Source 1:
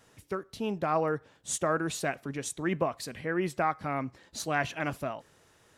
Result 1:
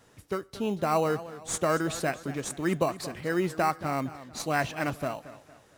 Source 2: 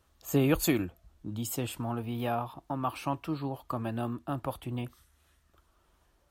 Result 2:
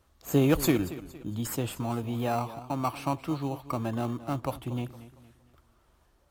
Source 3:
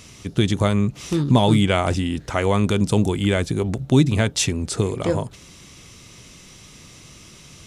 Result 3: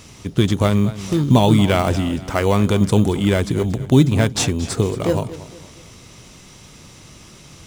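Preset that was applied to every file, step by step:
in parallel at -8.5 dB: sample-and-hold 13×; on the sum: warbling echo 0.23 s, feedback 40%, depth 92 cents, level -15.5 dB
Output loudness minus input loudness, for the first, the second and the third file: +2.0, +2.5, +2.5 LU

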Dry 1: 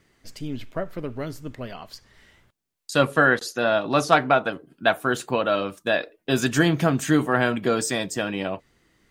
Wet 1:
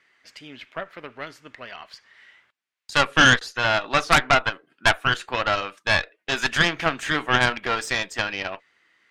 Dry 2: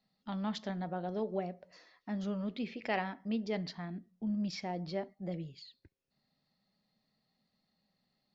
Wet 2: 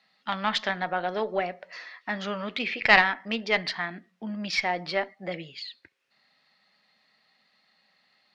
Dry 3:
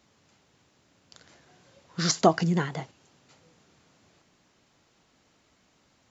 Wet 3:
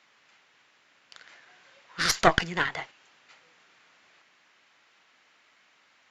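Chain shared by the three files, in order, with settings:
band-pass 2000 Hz, Q 1.2; added harmonics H 5 -22 dB, 6 -10 dB, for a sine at -8 dBFS; normalise peaks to -1.5 dBFS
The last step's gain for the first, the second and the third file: +3.5, +18.5, +6.5 dB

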